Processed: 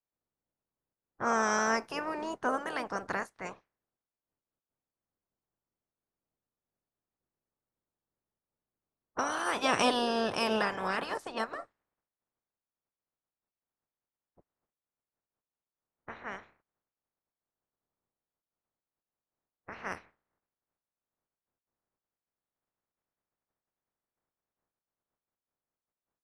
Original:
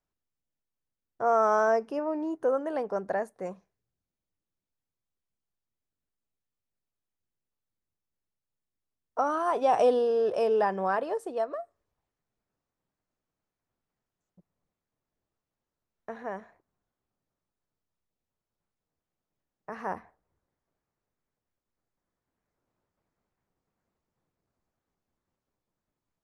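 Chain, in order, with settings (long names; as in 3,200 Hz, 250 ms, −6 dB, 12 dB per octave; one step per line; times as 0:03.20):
ceiling on every frequency bin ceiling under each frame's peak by 27 dB
low-pass that shuts in the quiet parts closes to 1,200 Hz, open at −27 dBFS
level −4 dB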